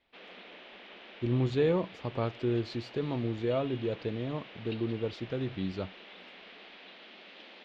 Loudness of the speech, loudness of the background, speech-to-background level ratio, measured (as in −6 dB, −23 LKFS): −33.0 LKFS, −48.5 LKFS, 15.5 dB